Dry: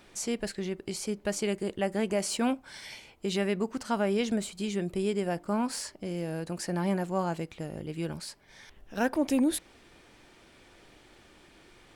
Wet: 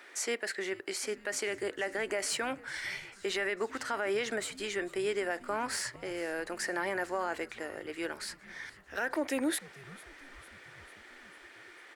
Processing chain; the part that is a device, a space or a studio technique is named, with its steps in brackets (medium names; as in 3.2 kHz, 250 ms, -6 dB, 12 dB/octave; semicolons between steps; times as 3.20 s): laptop speaker (high-pass 330 Hz 24 dB/octave; peaking EQ 1.4 kHz +6 dB 0.44 oct; peaking EQ 1.9 kHz +11.5 dB 0.48 oct; peak limiter -23 dBFS, peak gain reduction 10.5 dB); frequency-shifting echo 448 ms, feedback 62%, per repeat -130 Hz, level -21 dB